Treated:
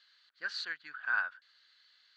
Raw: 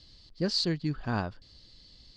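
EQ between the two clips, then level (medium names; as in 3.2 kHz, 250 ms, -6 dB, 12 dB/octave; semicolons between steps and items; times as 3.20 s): resonant high-pass 1.5 kHz, resonance Q 7; distance through air 92 m; peaking EQ 5.1 kHz -11.5 dB 0.24 oct; -4.5 dB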